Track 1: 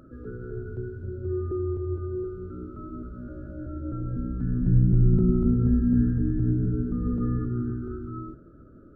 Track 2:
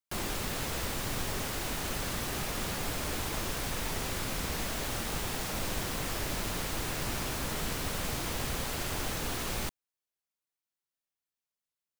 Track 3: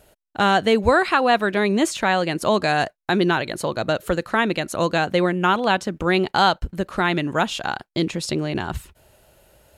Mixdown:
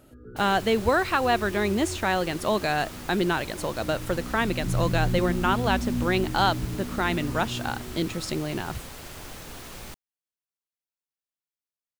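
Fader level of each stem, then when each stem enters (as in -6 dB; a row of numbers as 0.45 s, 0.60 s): -7.0 dB, -6.5 dB, -5.5 dB; 0.00 s, 0.25 s, 0.00 s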